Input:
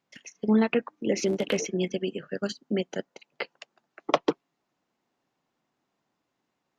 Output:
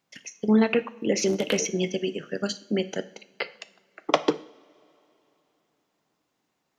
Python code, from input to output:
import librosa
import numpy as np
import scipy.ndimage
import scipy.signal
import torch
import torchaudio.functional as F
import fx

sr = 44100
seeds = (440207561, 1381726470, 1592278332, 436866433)

y = fx.high_shelf(x, sr, hz=4100.0, db=6.0)
y = fx.rev_double_slope(y, sr, seeds[0], early_s=0.53, late_s=3.3, knee_db=-22, drr_db=12.0)
y = F.gain(torch.from_numpy(y), 1.5).numpy()